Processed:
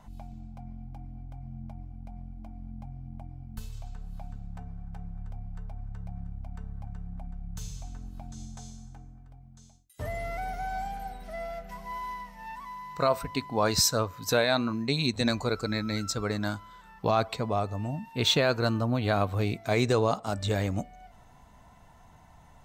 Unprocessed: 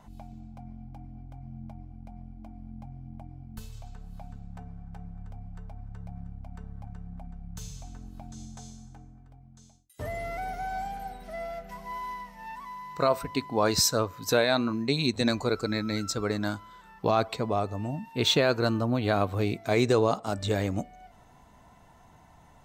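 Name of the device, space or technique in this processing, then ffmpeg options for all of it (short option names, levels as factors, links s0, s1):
low shelf boost with a cut just above: -af "lowshelf=f=66:g=5.5,equalizer=f=350:t=o:w=0.93:g=-4"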